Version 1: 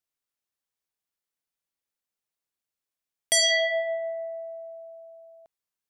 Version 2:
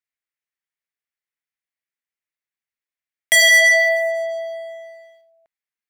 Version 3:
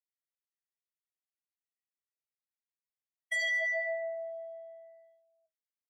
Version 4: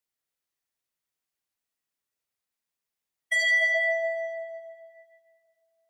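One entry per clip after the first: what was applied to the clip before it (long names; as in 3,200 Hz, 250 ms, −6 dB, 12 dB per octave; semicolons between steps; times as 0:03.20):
parametric band 2,000 Hz +14 dB 0.97 octaves; leveller curve on the samples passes 3; level −2.5 dB
expanding power law on the bin magnitudes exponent 1.8; tuned comb filter 640 Hz, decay 0.15 s, harmonics all, mix 80%; level −7.5 dB
dense smooth reverb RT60 2.3 s, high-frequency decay 0.75×, pre-delay 0 ms, DRR 5.5 dB; level +7 dB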